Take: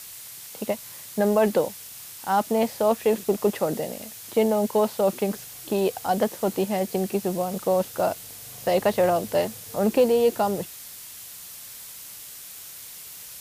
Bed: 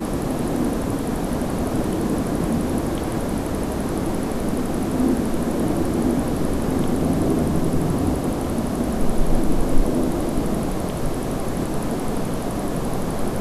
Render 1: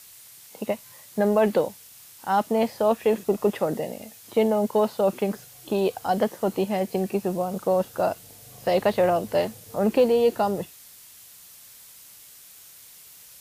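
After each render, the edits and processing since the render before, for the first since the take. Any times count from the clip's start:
noise reduction from a noise print 7 dB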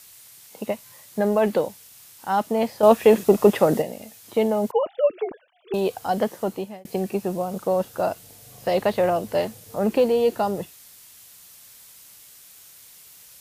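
0:02.83–0:03.82: clip gain +7 dB
0:04.71–0:05.74: three sine waves on the formant tracks
0:06.40–0:06.85: fade out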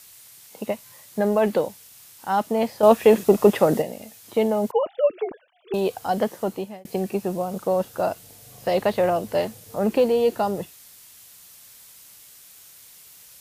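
no processing that can be heard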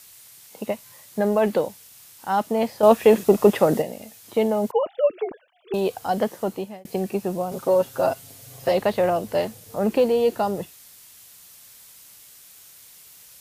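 0:07.51–0:08.72: comb filter 7.5 ms, depth 85%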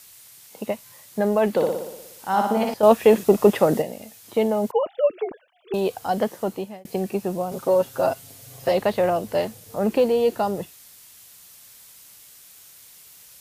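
0:01.51–0:02.74: flutter between parallel walls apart 10.2 metres, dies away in 0.91 s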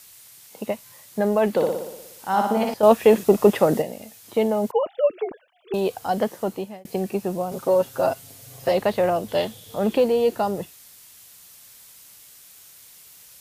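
0:09.28–0:09.97: parametric band 3,400 Hz +15 dB 0.31 octaves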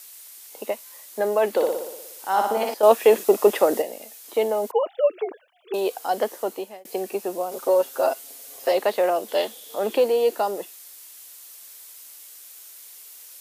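high-pass filter 310 Hz 24 dB per octave
high-shelf EQ 7,100 Hz +5.5 dB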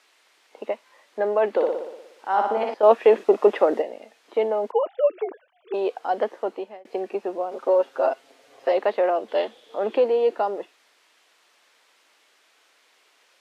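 low-pass filter 2,400 Hz 12 dB per octave
parametric band 170 Hz −9.5 dB 0.41 octaves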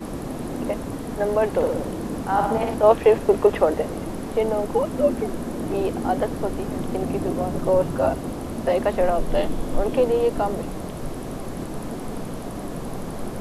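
mix in bed −7 dB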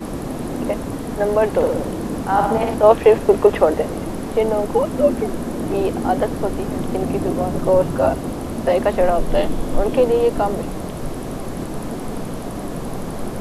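level +4 dB
brickwall limiter −1 dBFS, peak gain reduction 0.5 dB

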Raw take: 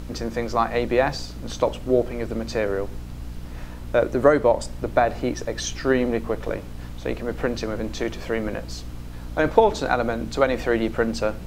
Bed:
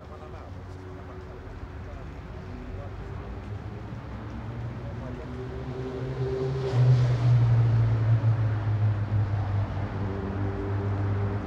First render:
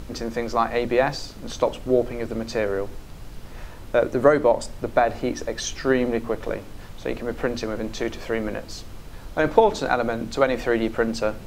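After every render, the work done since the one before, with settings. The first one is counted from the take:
hum removal 60 Hz, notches 5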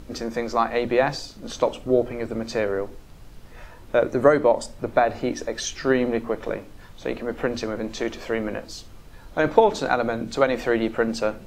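noise reduction from a noise print 6 dB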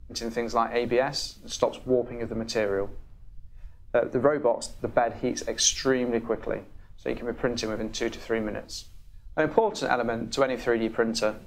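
downward compressor 12 to 1, threshold −20 dBFS, peak gain reduction 12 dB
multiband upward and downward expander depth 100%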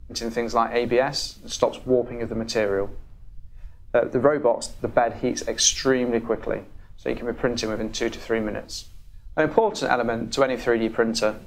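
level +3.5 dB
brickwall limiter −3 dBFS, peak gain reduction 1 dB

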